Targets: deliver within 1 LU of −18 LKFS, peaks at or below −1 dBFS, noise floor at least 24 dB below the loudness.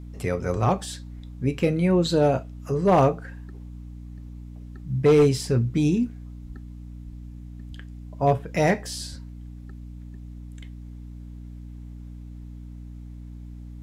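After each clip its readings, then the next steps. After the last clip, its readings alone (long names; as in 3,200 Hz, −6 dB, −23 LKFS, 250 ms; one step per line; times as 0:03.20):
share of clipped samples 0.3%; peaks flattened at −11.5 dBFS; mains hum 60 Hz; hum harmonics up to 300 Hz; level of the hum −36 dBFS; integrated loudness −23.0 LKFS; sample peak −11.5 dBFS; target loudness −18.0 LKFS
→ clipped peaks rebuilt −11.5 dBFS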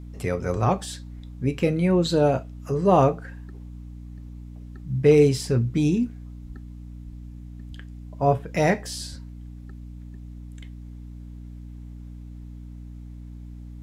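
share of clipped samples 0.0%; mains hum 60 Hz; hum harmonics up to 300 Hz; level of the hum −36 dBFS
→ mains-hum notches 60/120/180/240/300 Hz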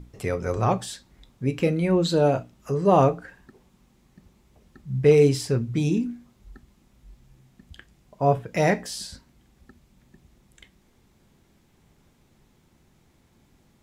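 mains hum none found; integrated loudness −23.0 LKFS; sample peak −6.5 dBFS; target loudness −18.0 LKFS
→ level +5 dB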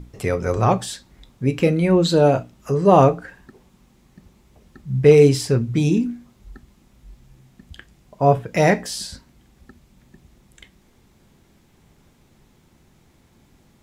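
integrated loudness −18.0 LKFS; sample peak −1.5 dBFS; background noise floor −57 dBFS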